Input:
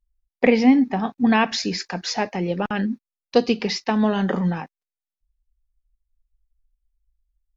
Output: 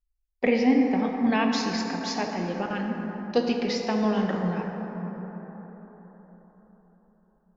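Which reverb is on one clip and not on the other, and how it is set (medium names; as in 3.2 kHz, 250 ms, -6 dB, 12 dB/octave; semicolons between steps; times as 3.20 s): plate-style reverb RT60 4.6 s, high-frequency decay 0.35×, DRR 1.5 dB; trim -7 dB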